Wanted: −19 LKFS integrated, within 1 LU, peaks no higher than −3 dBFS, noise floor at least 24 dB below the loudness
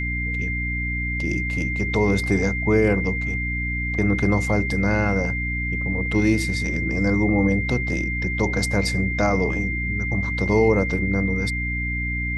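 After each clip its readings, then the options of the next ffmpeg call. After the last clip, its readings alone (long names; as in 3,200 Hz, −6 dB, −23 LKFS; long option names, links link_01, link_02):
mains hum 60 Hz; hum harmonics up to 300 Hz; level of the hum −25 dBFS; interfering tone 2,100 Hz; level of the tone −26 dBFS; integrated loudness −22.0 LKFS; sample peak −5.5 dBFS; target loudness −19.0 LKFS
→ -af "bandreject=frequency=60:width_type=h:width=6,bandreject=frequency=120:width_type=h:width=6,bandreject=frequency=180:width_type=h:width=6,bandreject=frequency=240:width_type=h:width=6,bandreject=frequency=300:width_type=h:width=6"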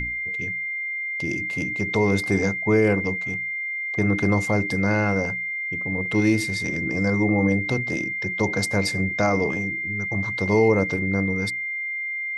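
mains hum none found; interfering tone 2,100 Hz; level of the tone −26 dBFS
→ -af "bandreject=frequency=2100:width=30"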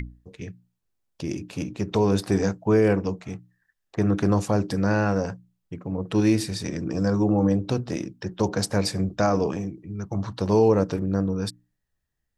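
interfering tone none found; integrated loudness −24.5 LKFS; sample peak −7.5 dBFS; target loudness −19.0 LKFS
→ -af "volume=5.5dB,alimiter=limit=-3dB:level=0:latency=1"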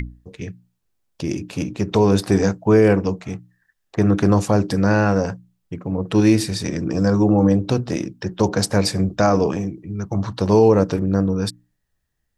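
integrated loudness −19.0 LKFS; sample peak −3.0 dBFS; background noise floor −73 dBFS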